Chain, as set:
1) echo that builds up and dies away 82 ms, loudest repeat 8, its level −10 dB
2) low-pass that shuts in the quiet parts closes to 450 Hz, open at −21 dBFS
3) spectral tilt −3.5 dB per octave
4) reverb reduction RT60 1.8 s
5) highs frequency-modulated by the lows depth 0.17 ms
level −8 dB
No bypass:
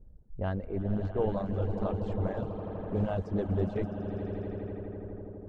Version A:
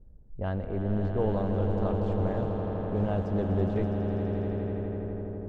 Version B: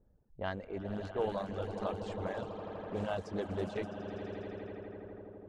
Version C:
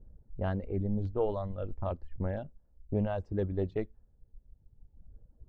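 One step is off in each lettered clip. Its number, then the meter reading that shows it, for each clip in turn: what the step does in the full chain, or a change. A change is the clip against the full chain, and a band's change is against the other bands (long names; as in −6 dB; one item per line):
4, change in integrated loudness +3.5 LU
3, 125 Hz band −9.0 dB
1, change in momentary loudness spread −1 LU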